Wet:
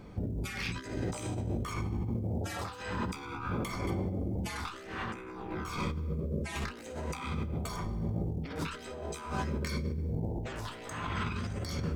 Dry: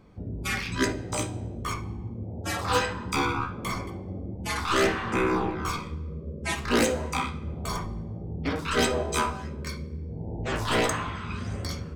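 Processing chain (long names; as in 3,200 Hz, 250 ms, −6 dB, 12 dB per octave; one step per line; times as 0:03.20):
floating-point word with a short mantissa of 6 bits
notch filter 1,100 Hz, Q 22
compressor whose output falls as the input rises −37 dBFS, ratio −1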